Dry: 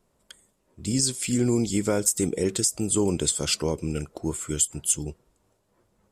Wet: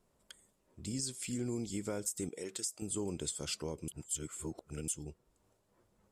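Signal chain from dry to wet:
0:02.29–0:02.82: high-pass filter 640 Hz 6 dB per octave
0:03.88–0:04.88: reverse
downward compressor 1.5 to 1, threshold −46 dBFS, peak gain reduction 10.5 dB
level −5 dB

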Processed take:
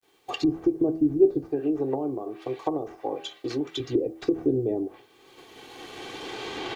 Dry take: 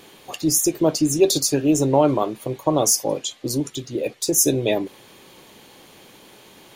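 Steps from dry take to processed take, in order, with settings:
running median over 5 samples
camcorder AGC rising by 8.6 dB per second
downward expander −36 dBFS
0:01.48–0:03.80: low-shelf EQ 430 Hz −10 dB
treble cut that deepens with the level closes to 370 Hz, closed at −18.5 dBFS
low-shelf EQ 99 Hz −8 dB
comb filter 2.6 ms, depth 63%
hum removal 81.32 Hz, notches 14
pitch vibrato 0.82 Hz 18 cents
bit reduction 11 bits
level −2 dB

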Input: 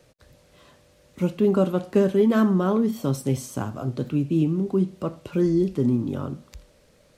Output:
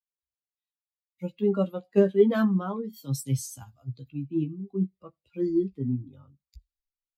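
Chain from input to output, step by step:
spectral dynamics exaggerated over time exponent 2
double-tracking delay 15 ms −6 dB
multiband upward and downward expander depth 70%
level −3.5 dB

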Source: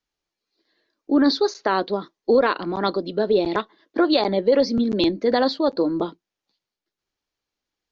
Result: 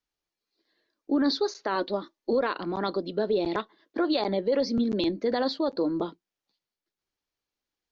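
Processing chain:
0:01.75–0:02.33: comb filter 3.4 ms, depth 60%
brickwall limiter −12.5 dBFS, peak gain reduction 4.5 dB
level −4.5 dB

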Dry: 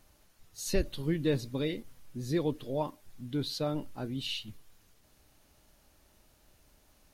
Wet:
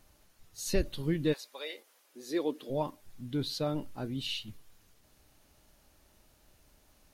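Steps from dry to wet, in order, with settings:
0:01.32–0:02.69: high-pass filter 800 Hz → 210 Hz 24 dB per octave

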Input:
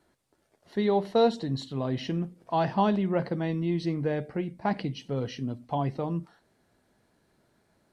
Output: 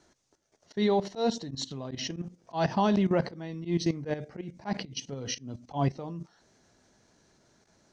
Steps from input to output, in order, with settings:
output level in coarse steps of 14 dB
volume swells 108 ms
low-pass with resonance 6,200 Hz, resonance Q 5.2
level +4.5 dB

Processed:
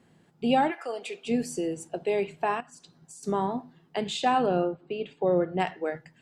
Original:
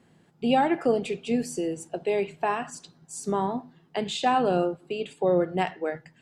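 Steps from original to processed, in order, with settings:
0:00.70–0:01.24: high-pass filter 1,200 Hz → 460 Hz 12 dB per octave
0:02.60–0:03.23: downward compressor 12 to 1, threshold −44 dBFS, peak gain reduction 14.5 dB
0:04.46–0:05.60: high-frequency loss of the air 190 metres
level −1 dB

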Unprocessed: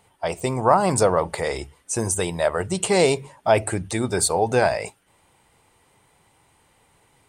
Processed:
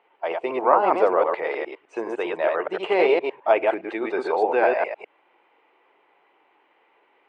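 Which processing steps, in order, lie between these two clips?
delay that plays each chunk backwards 103 ms, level −2 dB
Chebyshev band-pass filter 330–2,700 Hz, order 3
level −1 dB

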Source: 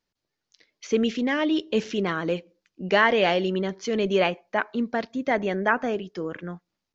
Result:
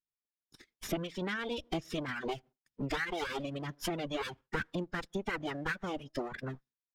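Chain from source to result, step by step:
lower of the sound and its delayed copy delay 0.57 ms
downward compressor 8 to 1, threshold −32 dBFS, peak gain reduction 14.5 dB
harmonic and percussive parts rebalanced percussive +3 dB
phase-vocoder pitch shift with formants kept −5 semitones
reverb reduction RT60 1.3 s
noise gate with hold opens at −59 dBFS

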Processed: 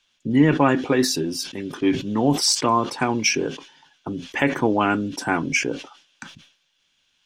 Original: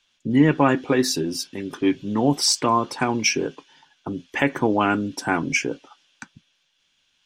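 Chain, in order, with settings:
level that may fall only so fast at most 120 dB per second

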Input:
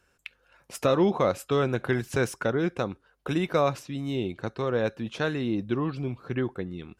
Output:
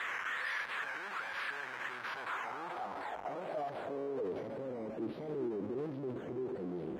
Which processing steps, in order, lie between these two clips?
sign of each sample alone
low-shelf EQ 99 Hz −7 dB
sample-and-hold swept by an LFO 10×, swing 60% 1.3 Hz
band-pass filter sweep 1,300 Hz → 250 Hz, 0:01.82–0:04.82
formants moved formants +4 semitones
level −3.5 dB

